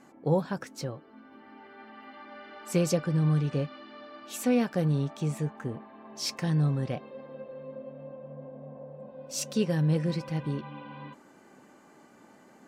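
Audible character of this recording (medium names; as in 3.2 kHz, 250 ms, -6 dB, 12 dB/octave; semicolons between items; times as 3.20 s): noise floor -56 dBFS; spectral tilt -6.5 dB/octave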